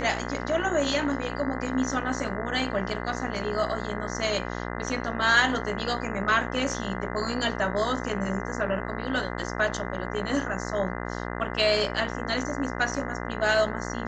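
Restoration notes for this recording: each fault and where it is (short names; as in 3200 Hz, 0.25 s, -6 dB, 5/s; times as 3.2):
buzz 60 Hz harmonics 34 -33 dBFS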